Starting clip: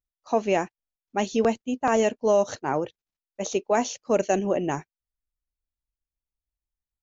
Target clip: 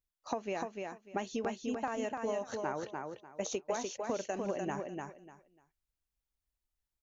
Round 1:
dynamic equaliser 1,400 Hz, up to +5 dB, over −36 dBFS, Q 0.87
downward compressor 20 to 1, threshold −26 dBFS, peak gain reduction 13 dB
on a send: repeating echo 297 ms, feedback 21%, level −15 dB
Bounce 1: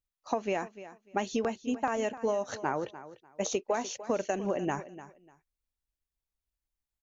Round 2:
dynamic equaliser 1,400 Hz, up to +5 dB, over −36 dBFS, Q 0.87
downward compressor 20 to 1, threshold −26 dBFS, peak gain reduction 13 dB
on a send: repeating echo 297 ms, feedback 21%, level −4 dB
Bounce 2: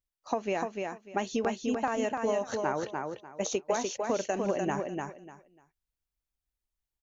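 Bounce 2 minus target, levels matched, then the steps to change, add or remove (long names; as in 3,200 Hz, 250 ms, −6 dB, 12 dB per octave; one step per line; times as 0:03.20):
downward compressor: peak gain reduction −6 dB
change: downward compressor 20 to 1, threshold −32.5 dBFS, peak gain reduction 19 dB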